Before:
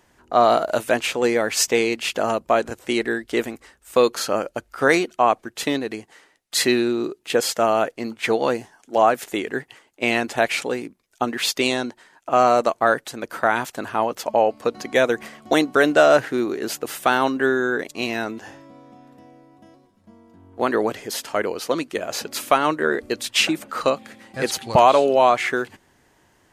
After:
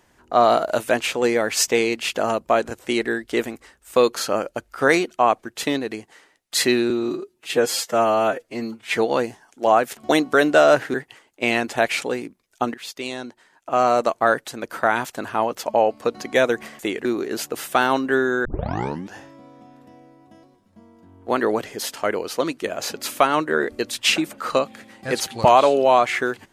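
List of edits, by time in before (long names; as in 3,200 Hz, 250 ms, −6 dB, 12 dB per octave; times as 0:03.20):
0:06.90–0:08.28: time-stretch 1.5×
0:09.28–0:09.54: swap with 0:15.39–0:16.36
0:11.34–0:12.78: fade in, from −16 dB
0:17.76: tape start 0.69 s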